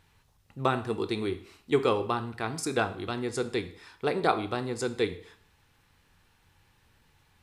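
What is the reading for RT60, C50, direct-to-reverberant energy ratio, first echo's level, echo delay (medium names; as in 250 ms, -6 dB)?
0.55 s, 14.0 dB, 10.0 dB, no echo, no echo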